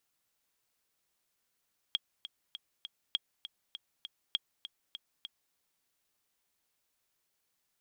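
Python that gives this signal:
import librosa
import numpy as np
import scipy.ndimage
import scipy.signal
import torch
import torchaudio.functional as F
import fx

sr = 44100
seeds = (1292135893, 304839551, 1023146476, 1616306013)

y = fx.click_track(sr, bpm=200, beats=4, bars=3, hz=3280.0, accent_db=12.5, level_db=-16.5)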